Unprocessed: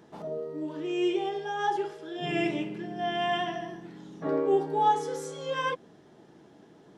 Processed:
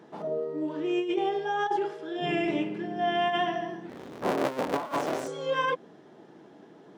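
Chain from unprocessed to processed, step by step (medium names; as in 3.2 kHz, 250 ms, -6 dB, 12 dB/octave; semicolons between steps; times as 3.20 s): 3.89–5.28 s: cycle switcher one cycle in 3, inverted; Bessel high-pass 200 Hz, order 2; treble shelf 4.3 kHz -10 dB; compressor with a negative ratio -29 dBFS, ratio -0.5; trim +3 dB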